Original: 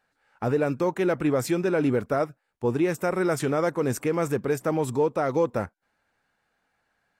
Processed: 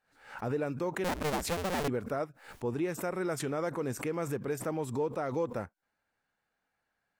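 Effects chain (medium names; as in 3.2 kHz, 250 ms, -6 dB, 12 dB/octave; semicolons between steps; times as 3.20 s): 1.04–1.88 s: cycle switcher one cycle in 2, inverted; swell ahead of each attack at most 110 dB/s; trim -9 dB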